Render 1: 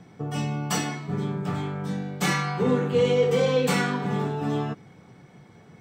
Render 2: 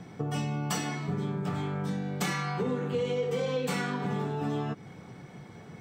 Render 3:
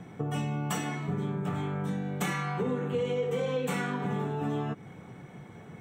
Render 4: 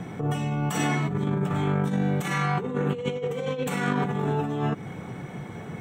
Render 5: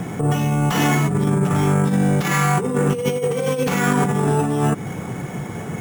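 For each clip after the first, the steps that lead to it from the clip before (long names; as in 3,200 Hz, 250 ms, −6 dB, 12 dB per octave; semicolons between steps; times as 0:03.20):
downward compressor 4 to 1, threshold −33 dBFS, peak gain reduction 13.5 dB; level +3.5 dB
parametric band 4,800 Hz −15 dB 0.39 octaves
compressor whose output falls as the input rises −33 dBFS, ratio −0.5; level +7.5 dB
in parallel at −4.5 dB: gain into a clipping stage and back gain 24 dB; on the sum: decimation without filtering 5×; level +4.5 dB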